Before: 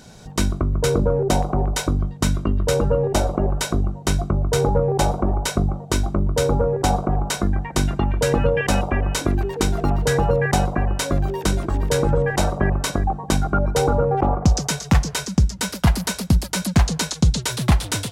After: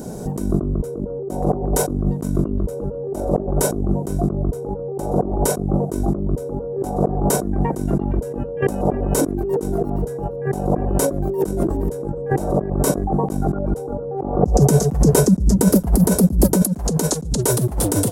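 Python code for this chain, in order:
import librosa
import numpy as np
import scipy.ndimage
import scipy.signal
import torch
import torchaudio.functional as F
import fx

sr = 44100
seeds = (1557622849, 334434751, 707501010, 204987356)

y = fx.curve_eq(x, sr, hz=(100.0, 190.0, 410.0, 2300.0, 3800.0, 11000.0), db=(0, 7, 12, -13, -13, 8))
y = fx.over_compress(y, sr, threshold_db=-23.0, ratio=-1.0)
y = fx.low_shelf(y, sr, hz=480.0, db=7.5, at=(14.43, 16.63))
y = y * 10.0 ** (1.0 / 20.0)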